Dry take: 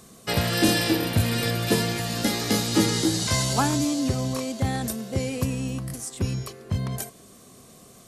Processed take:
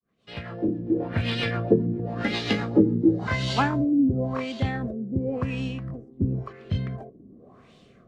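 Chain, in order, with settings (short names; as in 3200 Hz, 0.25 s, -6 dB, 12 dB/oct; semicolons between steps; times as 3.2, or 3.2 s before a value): opening faded in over 1.54 s; LFO low-pass sine 0.93 Hz 270–3400 Hz; rotary speaker horn 7.5 Hz, later 1 Hz, at 2.78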